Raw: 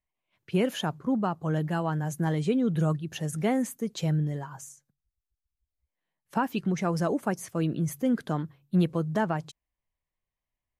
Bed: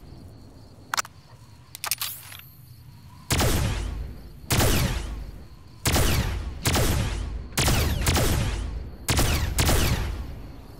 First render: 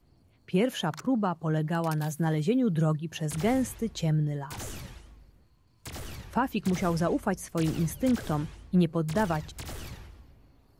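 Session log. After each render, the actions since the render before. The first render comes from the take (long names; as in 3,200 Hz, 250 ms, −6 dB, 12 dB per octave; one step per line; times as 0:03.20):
mix in bed −18.5 dB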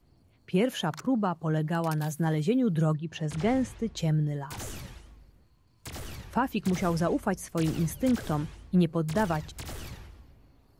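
0:02.94–0:03.97: high-frequency loss of the air 75 metres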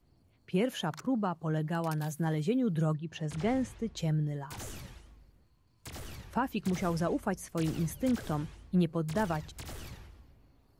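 level −4 dB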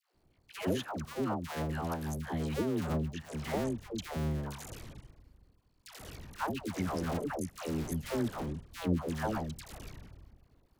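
sub-harmonics by changed cycles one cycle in 2, muted
all-pass dispersion lows, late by 141 ms, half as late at 610 Hz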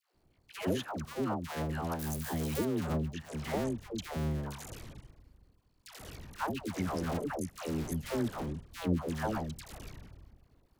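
0:01.99–0:02.65: spike at every zero crossing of −31 dBFS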